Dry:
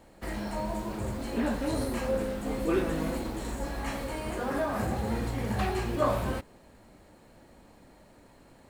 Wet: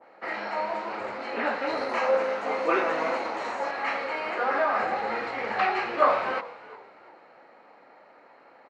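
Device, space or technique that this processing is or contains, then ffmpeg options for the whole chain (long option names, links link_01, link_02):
phone earpiece: -filter_complex "[0:a]asettb=1/sr,asplit=3[link_01][link_02][link_03];[link_01]atrim=end=1.894[link_04];[link_02]atrim=start=1.89:end=3.71,asetpts=PTS-STARTPTS,afade=type=in:duration=0.004:curve=qsin,afade=type=out:start_time=1.816:duration=0.004:curve=qsin,equalizer=frequency=630:width_type=o:width=0.33:gain=6,equalizer=frequency=1000:width_type=o:width=0.33:gain=6,equalizer=frequency=6300:width_type=o:width=0.33:gain=8,equalizer=frequency=10000:width_type=o:width=0.33:gain=10[link_05];[link_03]atrim=start=3.706[link_06];[link_04][link_05]acrossfade=duration=0.004:curve1=hsin:curve2=qsin[link_07];[link_07][link_06]acrossfade=duration=0.004:curve1=qsin:curve2=hsin,asplit=4[link_08][link_09][link_10][link_11];[link_09]adelay=352,afreqshift=-82,volume=-17.5dB[link_12];[link_10]adelay=704,afreqshift=-164,volume=-25.5dB[link_13];[link_11]adelay=1056,afreqshift=-246,volume=-33.4dB[link_14];[link_08][link_12][link_13][link_14]amix=inputs=4:normalize=0,highpass=480,equalizer=frequency=490:width_type=q:width=4:gain=4,equalizer=frequency=790:width_type=q:width=4:gain=6,equalizer=frequency=1300:width_type=q:width=4:gain=8,equalizer=frequency=2100:width_type=q:width=4:gain=5,equalizer=frequency=3400:width_type=q:width=4:gain=-10,lowpass=frequency=3900:width=0.5412,lowpass=frequency=3900:width=1.3066,adynamicequalizer=threshold=0.00631:dfrequency=1700:dqfactor=0.7:tfrequency=1700:tqfactor=0.7:attack=5:release=100:ratio=0.375:range=3.5:mode=boostabove:tftype=highshelf,volume=3dB"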